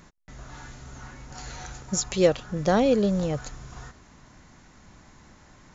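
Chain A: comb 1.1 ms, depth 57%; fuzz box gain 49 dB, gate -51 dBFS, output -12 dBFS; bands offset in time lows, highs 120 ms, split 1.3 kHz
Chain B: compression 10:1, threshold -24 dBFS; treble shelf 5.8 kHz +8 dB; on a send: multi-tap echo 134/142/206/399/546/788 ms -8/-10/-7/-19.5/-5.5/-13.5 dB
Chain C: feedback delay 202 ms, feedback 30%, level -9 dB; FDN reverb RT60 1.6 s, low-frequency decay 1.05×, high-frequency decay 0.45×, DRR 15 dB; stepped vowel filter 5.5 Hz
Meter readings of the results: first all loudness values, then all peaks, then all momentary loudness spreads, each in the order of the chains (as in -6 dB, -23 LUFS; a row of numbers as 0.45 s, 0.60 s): -17.0 LUFS, -28.5 LUFS, -33.0 LUFS; -3.5 dBFS, -10.0 dBFS, -15.0 dBFS; 9 LU, 19 LU, 22 LU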